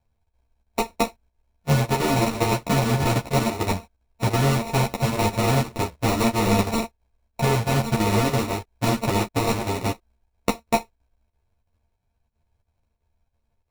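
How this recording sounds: a buzz of ramps at a fixed pitch in blocks of 64 samples; chopped level 3 Hz, depth 60%, duty 85%; aliases and images of a low sample rate 1600 Hz, jitter 0%; a shimmering, thickened sound

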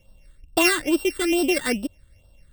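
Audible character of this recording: a buzz of ramps at a fixed pitch in blocks of 16 samples; phasing stages 8, 2.3 Hz, lowest notch 750–2100 Hz

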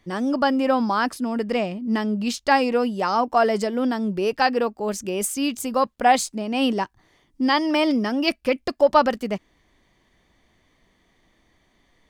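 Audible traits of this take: noise floor -64 dBFS; spectral tilt -4.0 dB/oct

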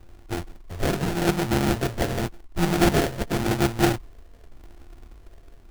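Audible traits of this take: a buzz of ramps at a fixed pitch in blocks of 128 samples; phasing stages 12, 0.88 Hz, lowest notch 290–1200 Hz; aliases and images of a low sample rate 1100 Hz, jitter 20%

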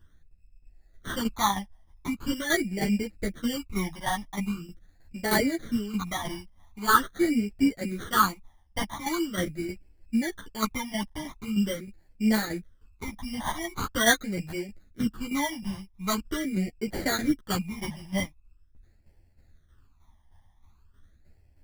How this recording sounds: aliases and images of a low sample rate 2600 Hz, jitter 0%; phasing stages 12, 0.43 Hz, lowest notch 430–1200 Hz; tremolo saw down 3.2 Hz, depth 65%; a shimmering, thickened sound

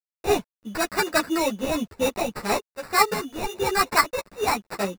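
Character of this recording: a quantiser's noise floor 10-bit, dither none; random-step tremolo; aliases and images of a low sample rate 3200 Hz, jitter 0%; a shimmering, thickened sound

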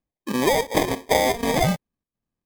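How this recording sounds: aliases and images of a low sample rate 1400 Hz, jitter 0%; chopped level 1.4 Hz, depth 65%, duty 85%; MP3

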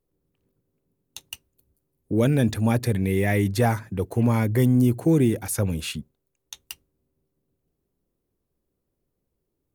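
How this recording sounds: noise floor -79 dBFS; spectral tilt -7.0 dB/oct

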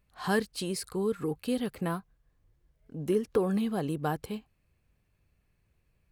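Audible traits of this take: noise floor -73 dBFS; spectral tilt -5.5 dB/oct

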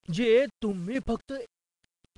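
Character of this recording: random-step tremolo 4.2 Hz, depth 70%; a quantiser's noise floor 10-bit, dither none; Nellymoser

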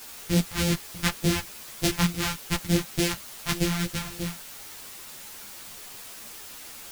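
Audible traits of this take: a buzz of ramps at a fixed pitch in blocks of 256 samples; phasing stages 2, 3.4 Hz, lowest notch 380–1100 Hz; a quantiser's noise floor 8-bit, dither triangular; a shimmering, thickened sound

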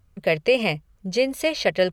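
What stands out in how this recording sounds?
noise floor -60 dBFS; spectral tilt -4.5 dB/oct

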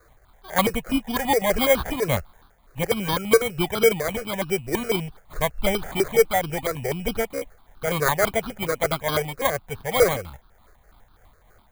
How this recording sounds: a quantiser's noise floor 10-bit, dither triangular; tremolo triangle 3.4 Hz, depth 45%; aliases and images of a low sample rate 2700 Hz, jitter 0%; notches that jump at a steady rate 12 Hz 860–2000 Hz

